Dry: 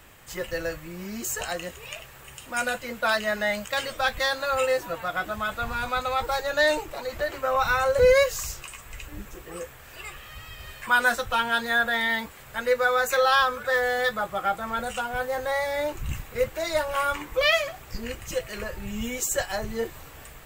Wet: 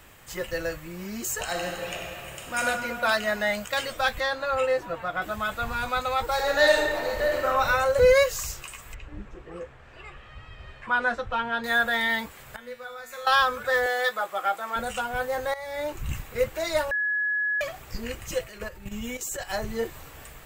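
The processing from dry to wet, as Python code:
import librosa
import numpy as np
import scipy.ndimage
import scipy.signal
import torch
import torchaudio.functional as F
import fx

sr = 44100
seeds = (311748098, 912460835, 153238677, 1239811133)

y = fx.reverb_throw(x, sr, start_s=1.43, length_s=1.21, rt60_s=2.8, drr_db=-1.0)
y = fx.lowpass(y, sr, hz=2400.0, slope=6, at=(4.2, 5.22))
y = fx.reverb_throw(y, sr, start_s=6.33, length_s=1.14, rt60_s=1.5, drr_db=-1.0)
y = fx.spacing_loss(y, sr, db_at_10k=26, at=(8.94, 11.64))
y = fx.comb_fb(y, sr, f0_hz=120.0, decay_s=0.92, harmonics='all', damping=0.0, mix_pct=90, at=(12.56, 13.27))
y = fx.highpass(y, sr, hz=430.0, slope=12, at=(13.86, 14.76))
y = fx.level_steps(y, sr, step_db=11, at=(18.44, 19.49))
y = fx.edit(y, sr, fx.fade_in_from(start_s=15.54, length_s=0.64, curve='qsin', floor_db=-16.0),
    fx.bleep(start_s=16.91, length_s=0.7, hz=1690.0, db=-23.0), tone=tone)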